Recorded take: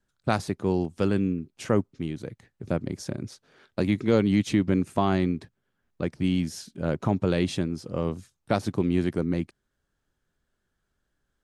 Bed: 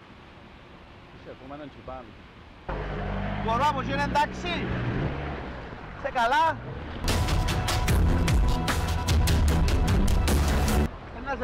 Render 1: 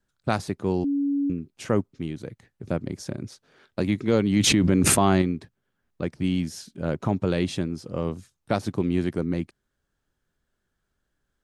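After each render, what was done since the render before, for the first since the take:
0:00.84–0:01.30: beep over 282 Hz −21 dBFS
0:04.36–0:05.22: envelope flattener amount 100%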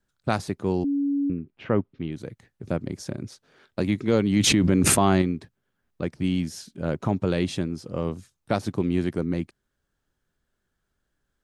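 0:00.83–0:02.11: low-pass filter 1,800 Hz → 4,100 Hz 24 dB per octave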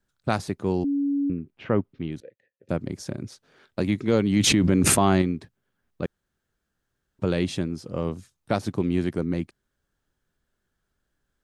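0:02.20–0:02.69: formant filter e
0:06.06–0:07.19: fill with room tone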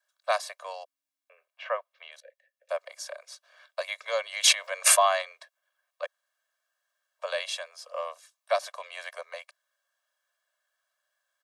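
Butterworth high-pass 580 Hz 72 dB per octave
comb filter 1.8 ms, depth 72%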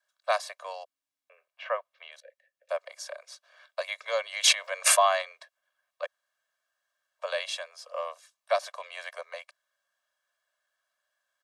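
high-shelf EQ 9,700 Hz −6 dB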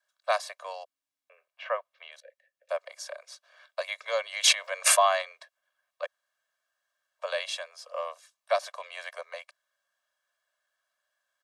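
no processing that can be heard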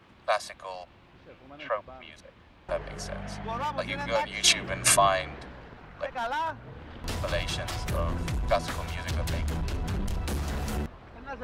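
mix in bed −8 dB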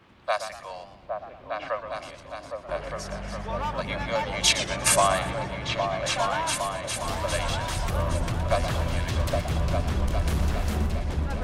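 echo whose low-pass opens from repeat to repeat 406 ms, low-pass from 200 Hz, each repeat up 2 octaves, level 0 dB
feedback echo with a swinging delay time 117 ms, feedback 41%, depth 145 cents, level −10.5 dB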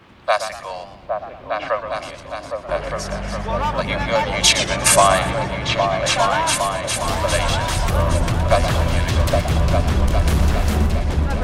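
level +8.5 dB
brickwall limiter −2 dBFS, peak gain reduction 2.5 dB

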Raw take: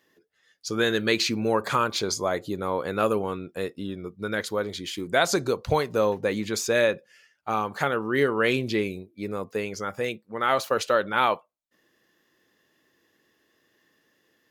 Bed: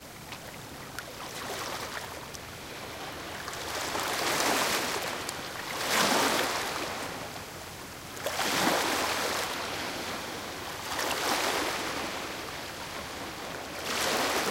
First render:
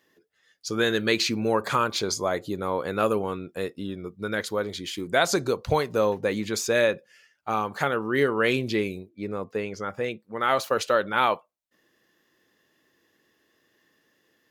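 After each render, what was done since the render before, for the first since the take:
0:09.09–0:10.20: low-pass filter 3,000 Hz 6 dB per octave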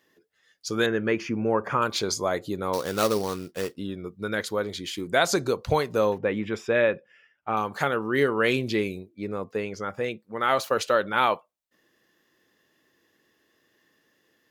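0:00.86–0:01.82: moving average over 11 samples
0:02.73–0:03.77: sample-rate reduction 5,100 Hz, jitter 20%
0:06.18–0:07.57: Savitzky-Golay smoothing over 25 samples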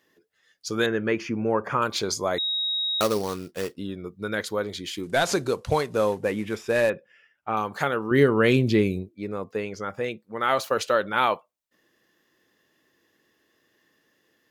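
0:02.38–0:03.01: beep over 3,790 Hz −23.5 dBFS
0:05.03–0:06.90: variable-slope delta modulation 64 kbit/s
0:08.11–0:09.09: low-shelf EQ 300 Hz +11.5 dB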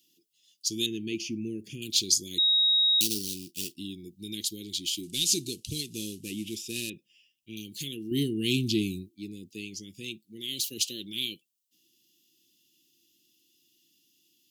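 Chebyshev band-stop filter 340–2,800 Hz, order 4
spectral tilt +2.5 dB per octave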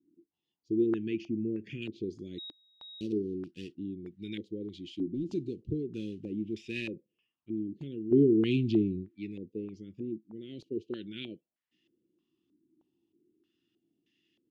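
low-pass on a step sequencer 3.2 Hz 310–1,900 Hz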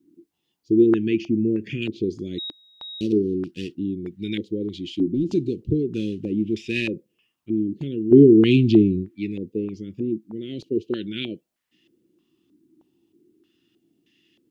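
level +11.5 dB

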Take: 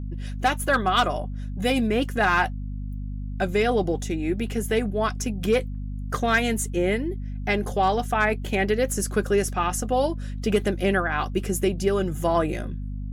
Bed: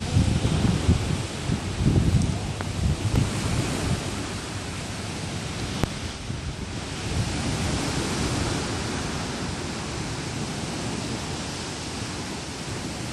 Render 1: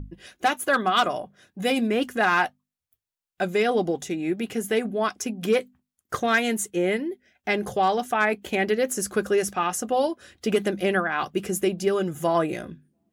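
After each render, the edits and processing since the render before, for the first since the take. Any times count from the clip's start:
mains-hum notches 50/100/150/200/250 Hz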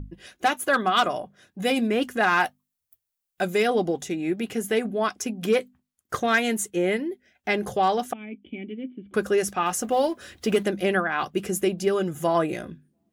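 0:02.40–0:03.68: high-shelf EQ 8,000 Hz +10.5 dB
0:08.13–0:09.14: formant resonators in series i
0:09.66–0:10.63: mu-law and A-law mismatch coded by mu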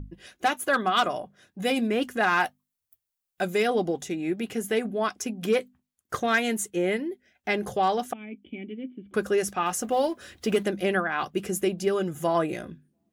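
level −2 dB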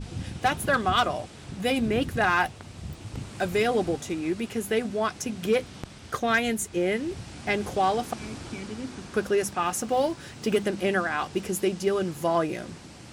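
mix in bed −14 dB

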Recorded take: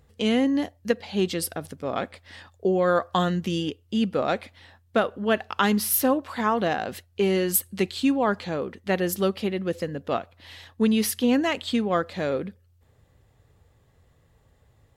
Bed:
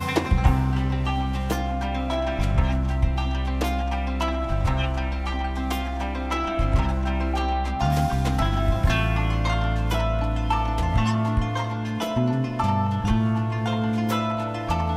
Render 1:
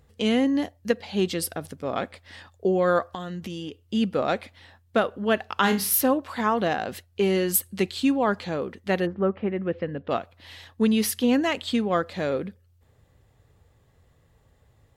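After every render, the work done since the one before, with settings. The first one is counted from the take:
0:03.06–0:03.83: downward compressor 10 to 1, threshold −30 dBFS
0:05.61–0:06.01: flutter between parallel walls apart 5.3 metres, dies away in 0.27 s
0:09.05–0:10.09: low-pass filter 1,400 Hz → 3,700 Hz 24 dB per octave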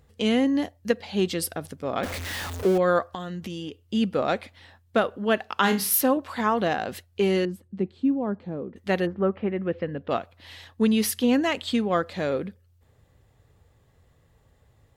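0:02.03–0:02.78: converter with a step at zero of −28 dBFS
0:05.16–0:06.17: high-pass filter 120 Hz
0:07.45–0:08.76: resonant band-pass 210 Hz, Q 0.85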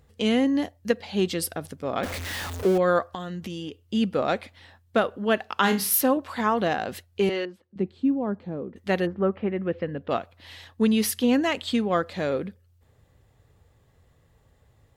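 0:07.29–0:07.76: three-way crossover with the lows and the highs turned down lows −17 dB, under 390 Hz, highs −19 dB, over 5,000 Hz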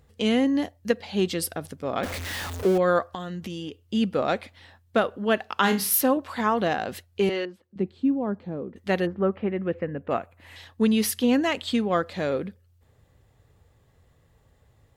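0:09.74–0:10.56: flat-topped bell 4,200 Hz −11 dB 1.1 octaves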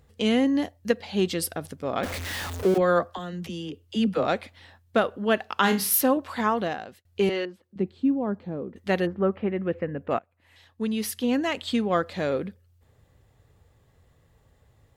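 0:02.74–0:04.26: all-pass dispersion lows, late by 41 ms, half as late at 330 Hz
0:06.45–0:07.05: fade out
0:10.19–0:11.92: fade in, from −19.5 dB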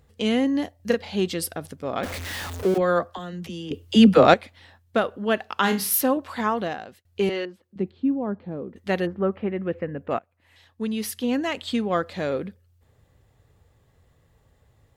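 0:00.76–0:01.16: double-tracking delay 35 ms −3 dB
0:03.71–0:04.34: clip gain +10.5 dB
0:07.91–0:08.51: Gaussian smoothing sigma 1.8 samples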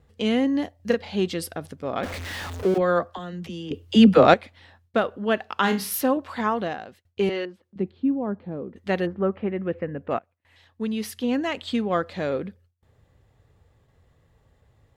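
noise gate with hold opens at −53 dBFS
high-shelf EQ 7,100 Hz −8.5 dB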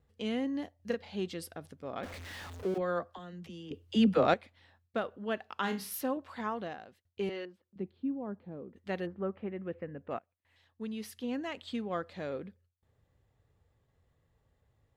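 level −11.5 dB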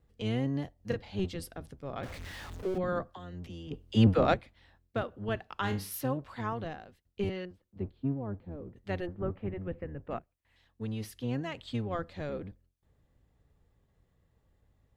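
sub-octave generator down 1 octave, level +1 dB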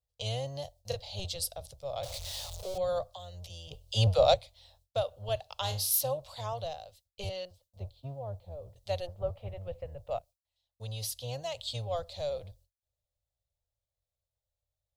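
noise gate with hold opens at −54 dBFS
drawn EQ curve 110 Hz 0 dB, 260 Hz −25 dB, 380 Hz −16 dB, 580 Hz +8 dB, 1,700 Hz −14 dB, 3,900 Hz +13 dB

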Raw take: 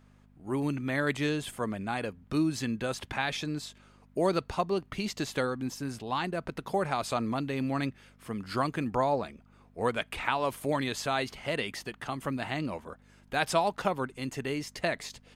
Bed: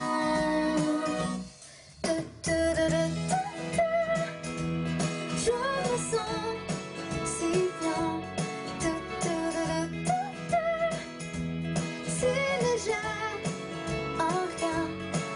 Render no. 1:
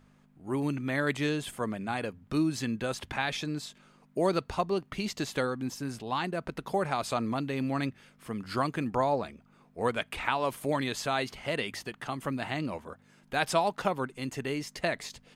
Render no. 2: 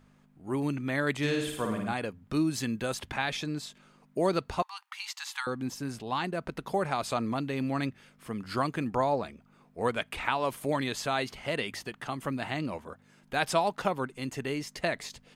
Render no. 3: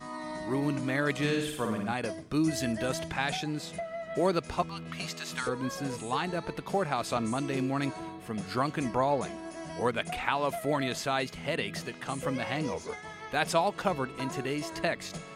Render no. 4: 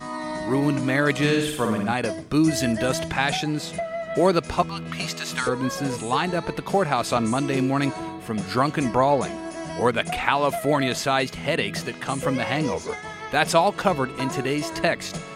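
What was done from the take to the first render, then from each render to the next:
hum removal 50 Hz, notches 2
0:01.17–0:01.93: flutter between parallel walls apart 9.5 metres, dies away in 0.75 s; 0:02.47–0:03.00: high-shelf EQ 8,000 Hz +7.5 dB; 0:04.62–0:05.47: linear-phase brick-wall high-pass 790 Hz
mix in bed −11 dB
level +8 dB

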